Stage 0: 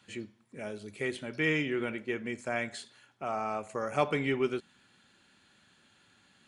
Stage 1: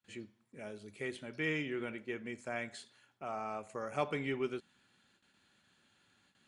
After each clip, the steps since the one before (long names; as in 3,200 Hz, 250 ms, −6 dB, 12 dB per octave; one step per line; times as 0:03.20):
noise gate with hold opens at −54 dBFS
level −6.5 dB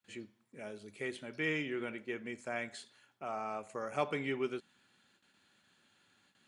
low-shelf EQ 93 Hz −9 dB
level +1 dB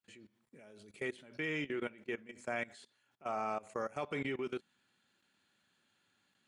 output level in coarse steps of 20 dB
level +3.5 dB